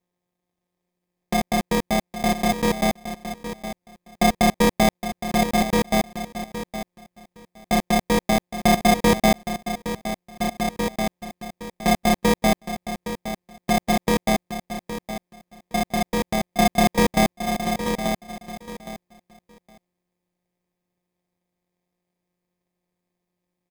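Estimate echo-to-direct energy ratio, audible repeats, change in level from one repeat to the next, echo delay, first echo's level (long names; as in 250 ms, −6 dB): −11.0 dB, 2, −16.0 dB, 815 ms, −11.0 dB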